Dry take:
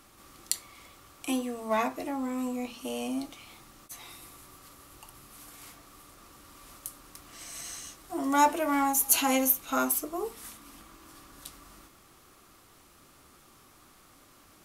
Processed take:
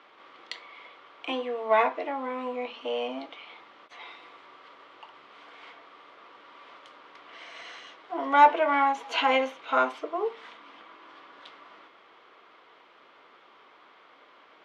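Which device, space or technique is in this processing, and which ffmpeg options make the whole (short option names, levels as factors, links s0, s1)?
phone earpiece: -af "highpass=380,equalizer=f=460:t=q:w=4:g=9,equalizer=f=650:t=q:w=4:g=5,equalizer=f=970:t=q:w=4:g=8,equalizer=f=1500:t=q:w=4:g=5,equalizer=f=2100:t=q:w=4:g=7,equalizer=f=3200:t=q:w=4:g=6,lowpass=f=3700:w=0.5412,lowpass=f=3700:w=1.3066"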